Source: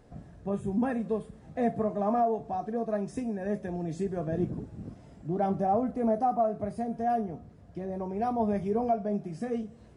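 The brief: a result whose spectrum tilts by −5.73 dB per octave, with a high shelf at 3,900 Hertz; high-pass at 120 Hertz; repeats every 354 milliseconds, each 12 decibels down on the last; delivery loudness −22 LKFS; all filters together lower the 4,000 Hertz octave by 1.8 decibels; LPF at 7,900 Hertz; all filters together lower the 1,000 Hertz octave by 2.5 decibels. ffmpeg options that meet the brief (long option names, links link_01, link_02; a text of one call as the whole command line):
ffmpeg -i in.wav -af "highpass=120,lowpass=7900,equalizer=frequency=1000:width_type=o:gain=-4.5,highshelf=frequency=3900:gain=6.5,equalizer=frequency=4000:width_type=o:gain=-6.5,aecho=1:1:354|708|1062:0.251|0.0628|0.0157,volume=10dB" out.wav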